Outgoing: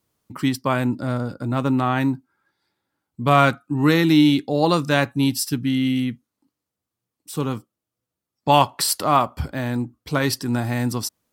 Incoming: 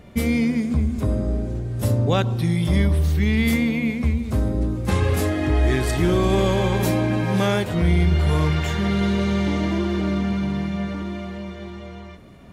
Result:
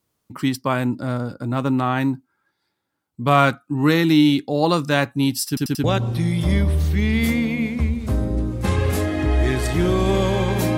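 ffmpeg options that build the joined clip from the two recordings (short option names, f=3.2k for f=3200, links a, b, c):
-filter_complex "[0:a]apad=whole_dur=10.77,atrim=end=10.77,asplit=4[a][b][c][d];[a]atrim=end=5.572[e];[b]atrim=start=5.478:end=5.572[f];[c]atrim=start=5.478:end=5.572[g];[d]atrim=start=5.478:end=5.572[h];[1:a]atrim=start=2.078:end=7.01[i];[e][f]acrossfade=d=0.004:c1=hsin:c2=hsin[j];[j][g]acrossfade=d=0.004:c1=hsin:c2=hsin[k];[k][h]acrossfade=d=0.004:c1=hsin:c2=hsin[l];[l][i]acrossfade=d=0.004:c1=hsin:c2=hsin"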